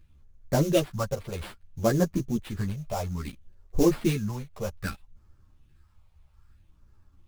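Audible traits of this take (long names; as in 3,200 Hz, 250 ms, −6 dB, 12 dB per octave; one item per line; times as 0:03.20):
phaser sweep stages 4, 0.61 Hz, lowest notch 270–3,100 Hz
aliases and images of a low sample rate 6,400 Hz, jitter 20%
a shimmering, thickened sound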